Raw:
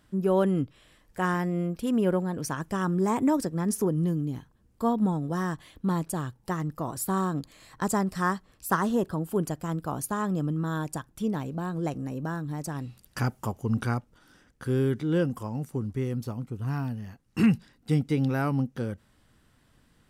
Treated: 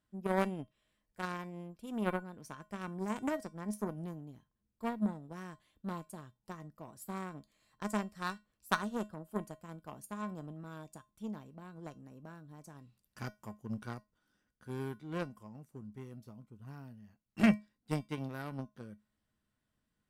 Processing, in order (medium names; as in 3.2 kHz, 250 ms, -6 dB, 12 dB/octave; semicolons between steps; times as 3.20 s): Chebyshev shaper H 3 -10 dB, 5 -34 dB, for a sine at -12.5 dBFS; feedback comb 210 Hz, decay 0.22 s, harmonics odd, mix 70%; trim +5 dB